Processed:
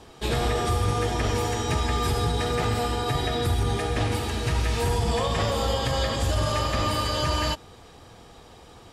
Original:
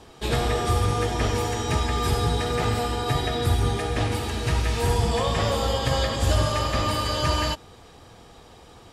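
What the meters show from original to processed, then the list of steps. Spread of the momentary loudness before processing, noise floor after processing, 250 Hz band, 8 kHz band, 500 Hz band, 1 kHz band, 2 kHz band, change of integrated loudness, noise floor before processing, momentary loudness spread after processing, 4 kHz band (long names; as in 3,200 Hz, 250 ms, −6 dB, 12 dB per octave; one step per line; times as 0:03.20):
3 LU, −49 dBFS, −1.0 dB, −1.0 dB, −1.0 dB, −1.0 dB, −1.0 dB, −1.0 dB, −49 dBFS, 2 LU, −1.0 dB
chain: brickwall limiter −15 dBFS, peak gain reduction 5.5 dB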